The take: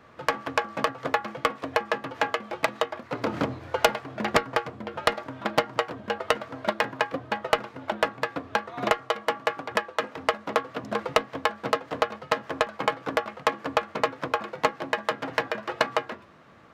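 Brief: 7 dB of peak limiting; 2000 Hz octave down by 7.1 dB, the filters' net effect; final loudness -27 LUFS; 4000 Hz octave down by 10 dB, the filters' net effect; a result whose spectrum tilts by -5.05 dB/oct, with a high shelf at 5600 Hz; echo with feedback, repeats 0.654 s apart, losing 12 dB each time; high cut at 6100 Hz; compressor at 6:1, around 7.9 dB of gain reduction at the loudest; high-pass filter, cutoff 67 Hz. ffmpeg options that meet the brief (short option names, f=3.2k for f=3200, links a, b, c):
-af "highpass=67,lowpass=6.1k,equalizer=f=2k:t=o:g=-6.5,equalizer=f=4k:t=o:g=-8,highshelf=f=5.6k:g=-7.5,acompressor=threshold=-28dB:ratio=6,alimiter=limit=-21dB:level=0:latency=1,aecho=1:1:654|1308|1962:0.251|0.0628|0.0157,volume=11.5dB"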